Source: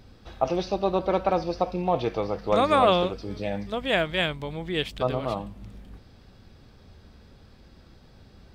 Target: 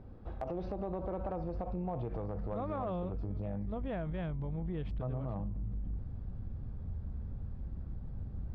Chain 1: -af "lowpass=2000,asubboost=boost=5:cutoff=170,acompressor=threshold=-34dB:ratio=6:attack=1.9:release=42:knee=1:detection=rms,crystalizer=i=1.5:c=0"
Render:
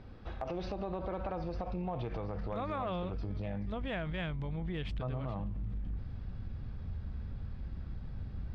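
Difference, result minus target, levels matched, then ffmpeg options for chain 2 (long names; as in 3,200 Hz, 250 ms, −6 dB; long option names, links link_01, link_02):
2,000 Hz band +9.0 dB
-af "lowpass=880,asubboost=boost=5:cutoff=170,acompressor=threshold=-34dB:ratio=6:attack=1.9:release=42:knee=1:detection=rms,crystalizer=i=1.5:c=0"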